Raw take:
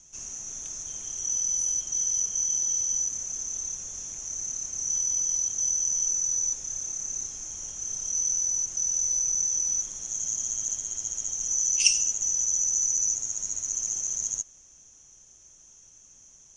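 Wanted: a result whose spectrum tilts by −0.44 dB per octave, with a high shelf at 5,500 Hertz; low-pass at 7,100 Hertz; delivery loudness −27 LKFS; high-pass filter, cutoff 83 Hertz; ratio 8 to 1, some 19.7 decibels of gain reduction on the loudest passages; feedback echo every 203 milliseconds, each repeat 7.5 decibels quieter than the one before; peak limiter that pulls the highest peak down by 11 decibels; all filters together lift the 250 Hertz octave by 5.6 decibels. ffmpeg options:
ffmpeg -i in.wav -af "highpass=83,lowpass=7100,equalizer=frequency=250:width_type=o:gain=7.5,highshelf=frequency=5500:gain=-6,acompressor=threshold=-40dB:ratio=8,alimiter=level_in=13.5dB:limit=-24dB:level=0:latency=1,volume=-13.5dB,aecho=1:1:203|406|609|812|1015:0.422|0.177|0.0744|0.0312|0.0131,volume=15dB" out.wav

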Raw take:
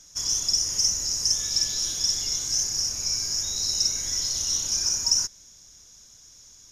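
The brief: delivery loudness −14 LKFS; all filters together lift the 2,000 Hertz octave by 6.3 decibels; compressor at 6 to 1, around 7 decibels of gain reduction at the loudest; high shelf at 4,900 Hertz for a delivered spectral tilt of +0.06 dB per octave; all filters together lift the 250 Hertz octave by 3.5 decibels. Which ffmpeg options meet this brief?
ffmpeg -i in.wav -af "equalizer=frequency=250:width_type=o:gain=4.5,equalizer=frequency=2000:width_type=o:gain=6.5,highshelf=frequency=4900:gain=7.5,acompressor=threshold=-21dB:ratio=6,volume=8dB" out.wav

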